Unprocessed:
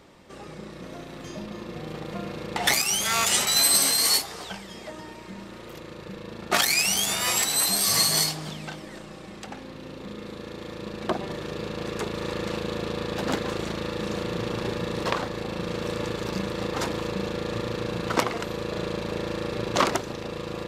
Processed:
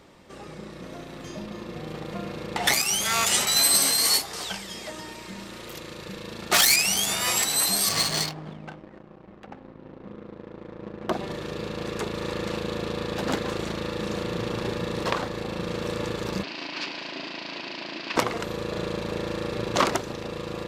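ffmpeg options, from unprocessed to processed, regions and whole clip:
-filter_complex "[0:a]asettb=1/sr,asplit=3[a][b][c];[a]atrim=end=4.334[d];[b]atrim=start=4.33:end=6.76,asetpts=PTS-STARTPTS,afade=t=in:d=0.004:c=qsin,afade=t=out:st=2.426:d=0.004:c=qsin,highshelf=f=2.4k:g=9.5,asoftclip=type=hard:threshold=-13.5dB[e];[c]atrim=start=6.756[f];[d][e]acrossfade=d=0.004:c1=hsin:c2=qsin[g];[g][f]acrossfade=d=0.004:c1=qsin:c2=hsin,asettb=1/sr,asplit=3[h][i][j];[h]atrim=end=7.894[k];[i]atrim=start=7.89:end=11.11,asetpts=PTS-STARTPTS,afade=t=in:d=0.004:c=qsin,afade=t=out:st=3.216:d=0.004:c=qsin,highpass=54,aeval=exprs='sgn(val(0))*max(abs(val(0))-0.00531,0)':c=same,adynamicsmooth=sensitivity=3.5:basefreq=1.1k[l];[j]atrim=start=11.106[m];[k][l]acrossfade=d=0.004:c1=hsin:c2=qsin[n];[n][m]acrossfade=d=0.004:c1=qsin:c2=hsin,asettb=1/sr,asplit=3[o][p][q];[o]atrim=end=16.434[r];[p]atrim=start=16.43:end=18.16,asetpts=PTS-STARTPTS,afade=t=in:d=0.004:c=qsin,afade=t=out:st=1.726:d=0.004:c=qsin,aeval=exprs='abs(val(0))':c=same,highpass=f=230:w=0.5412,highpass=f=230:w=1.3066,equalizer=f=330:t=q:w=4:g=5,equalizer=f=480:t=q:w=4:g=-10,equalizer=f=770:t=q:w=4:g=-9,equalizer=f=1.3k:t=q:w=4:g=-5,equalizer=f=2.6k:t=q:w=4:g=8,equalizer=f=4.7k:t=q:w=4:g=8,lowpass=f=5.2k:w=0.5412,lowpass=f=5.2k:w=1.3066[s];[q]atrim=start=18.156[t];[r][s]acrossfade=d=0.004:c1=hsin:c2=qsin[u];[u][t]acrossfade=d=0.004:c1=qsin:c2=hsin"

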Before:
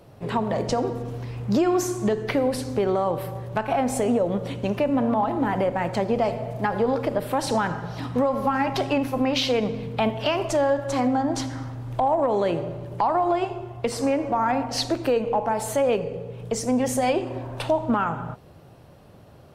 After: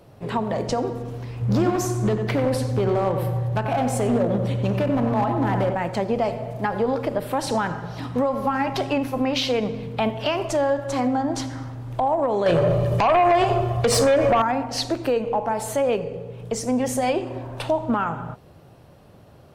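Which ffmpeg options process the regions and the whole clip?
-filter_complex "[0:a]asettb=1/sr,asplit=3[a][b][c];[a]atrim=end=1.414[d];[b]atrim=start=1.41:end=5.75,asetpts=PTS-STARTPTS,afade=t=in:d=0.004:c=qsin,afade=t=out:st=4.336:d=0.004:c=qsin,equalizer=f=110:t=o:w=0.69:g=11,asoftclip=type=hard:threshold=-17dB,asplit=2[e][f];[f]adelay=93,lowpass=f=1.9k:p=1,volume=-5.5dB,asplit=2[g][h];[h]adelay=93,lowpass=f=1.9k:p=1,volume=0.54,asplit=2[i][j];[j]adelay=93,lowpass=f=1.9k:p=1,volume=0.54,asplit=2[k][l];[l]adelay=93,lowpass=f=1.9k:p=1,volume=0.54,asplit=2[m][n];[n]adelay=93,lowpass=f=1.9k:p=1,volume=0.54,asplit=2[o][p];[p]adelay=93,lowpass=f=1.9k:p=1,volume=0.54,asplit=2[q][r];[r]adelay=93,lowpass=f=1.9k:p=1,volume=0.54[s];[e][g][i][k][m][o][q][s]amix=inputs=8:normalize=0,atrim=end_sample=191394[t];[c]atrim=start=5.746[u];[d][t]acrossfade=d=0.004:c1=hsin:c2=qsin[v];[v][u]acrossfade=d=0.004:c1=qsin:c2=hsin,asettb=1/sr,asplit=3[w][x][y];[w]atrim=end=12.464[z];[x]atrim=start=12.46:end=14.42,asetpts=PTS-STARTPTS,afade=t=in:d=0.004:c=qsin,afade=t=out:st=1.956:d=0.004:c=qsin,aecho=1:1:1.7:0.55,atrim=end_sample=86436,acompressor=threshold=-25dB:ratio=3:attack=3.2:release=140:knee=1:detection=peak,aeval=exprs='0.211*sin(PI/2*2.82*val(0)/0.211)':c=same[aa];[y]atrim=start=14.416[ab];[z][aa]acrossfade=d=0.004:c1=hsin:c2=qsin[ac];[ac][ab]acrossfade=d=0.004:c1=qsin:c2=hsin"

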